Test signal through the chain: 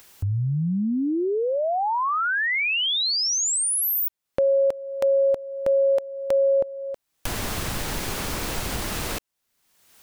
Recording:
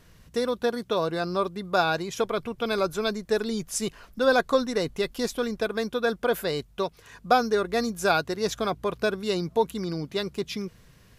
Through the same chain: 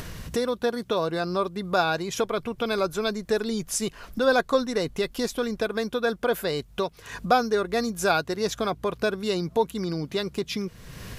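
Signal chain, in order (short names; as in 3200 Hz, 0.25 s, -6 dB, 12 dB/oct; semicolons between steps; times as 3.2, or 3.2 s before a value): upward compressor, threshold -23 dBFS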